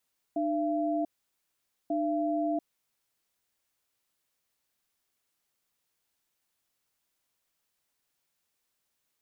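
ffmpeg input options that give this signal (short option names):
-f lavfi -i "aevalsrc='0.0355*(sin(2*PI*302*t)+sin(2*PI*678*t))*clip(min(mod(t,1.54),0.69-mod(t,1.54))/0.005,0,1)':d=2.57:s=44100"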